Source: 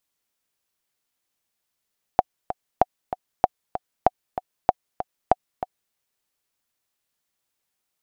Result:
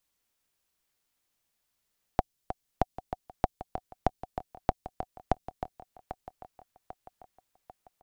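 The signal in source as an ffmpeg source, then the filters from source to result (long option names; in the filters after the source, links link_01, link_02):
-f lavfi -i "aevalsrc='pow(10,(-1.5-11.5*gte(mod(t,2*60/192),60/192))/20)*sin(2*PI*740*mod(t,60/192))*exp(-6.91*mod(t,60/192)/0.03)':duration=3.75:sample_rate=44100"
-filter_complex "[0:a]lowshelf=frequency=77:gain=9,aecho=1:1:794|1588|2382|3176:0.141|0.0593|0.0249|0.0105,acrossover=split=360|3000[link_01][link_02][link_03];[link_02]acompressor=threshold=-46dB:ratio=1.5[link_04];[link_01][link_04][link_03]amix=inputs=3:normalize=0"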